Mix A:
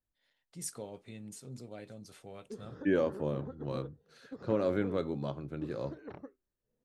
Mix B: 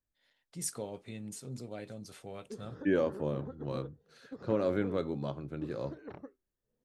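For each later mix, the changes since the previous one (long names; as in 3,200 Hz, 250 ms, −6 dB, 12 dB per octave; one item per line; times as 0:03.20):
first voice +3.5 dB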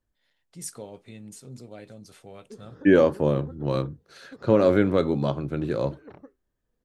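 second voice +11.5 dB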